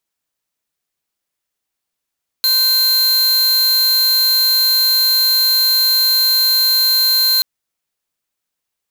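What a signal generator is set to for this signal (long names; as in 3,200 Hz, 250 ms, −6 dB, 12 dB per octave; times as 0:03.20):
tone square 4,150 Hz −13.5 dBFS 4.98 s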